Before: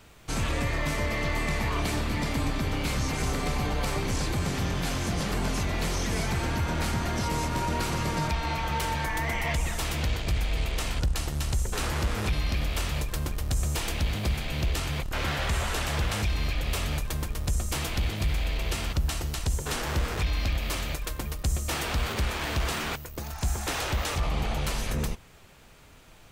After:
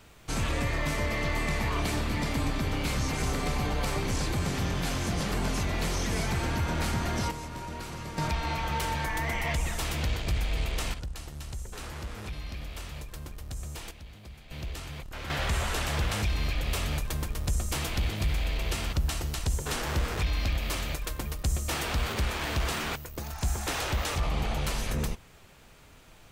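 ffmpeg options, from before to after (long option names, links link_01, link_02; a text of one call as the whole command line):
ffmpeg -i in.wav -af "asetnsamples=nb_out_samples=441:pad=0,asendcmd='7.31 volume volume -10dB;8.18 volume volume -1.5dB;10.94 volume volume -10.5dB;13.91 volume volume -19dB;14.51 volume volume -9.5dB;15.3 volume volume -1dB',volume=-1dB" out.wav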